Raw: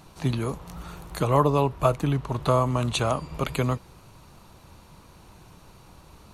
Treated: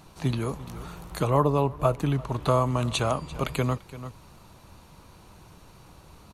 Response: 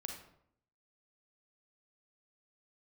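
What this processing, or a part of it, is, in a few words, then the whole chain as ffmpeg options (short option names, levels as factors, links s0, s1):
ducked delay: -filter_complex "[0:a]asettb=1/sr,asplit=3[s0][s1][s2];[s0]atrim=end=1.304[s3];[s1]atrim=start=1.3:end=1.99,asetpts=PTS-STARTPTS,afade=t=in:d=0.004:c=qsin,afade=t=out:st=0.686:d=0.004:c=qsin,equalizer=f=5000:w=0.31:g=-5[s4];[s2]atrim=start=1.986[s5];[s3][s4]acrossfade=d=0.004:c1=hsin:c2=qsin[s6];[s6][s5]acrossfade=d=0.004:c1=qsin:c2=hsin,asplit=3[s7][s8][s9];[s8]adelay=341,volume=0.376[s10];[s9]apad=whole_len=294308[s11];[s10][s11]sidechaincompress=threshold=0.00794:ratio=3:attack=16:release=281[s12];[s7][s12]amix=inputs=2:normalize=0,volume=0.891"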